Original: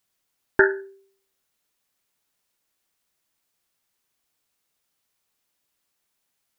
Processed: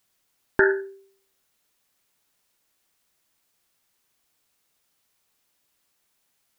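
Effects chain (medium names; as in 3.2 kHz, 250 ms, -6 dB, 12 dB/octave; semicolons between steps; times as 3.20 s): loudness maximiser +10.5 dB; trim -6 dB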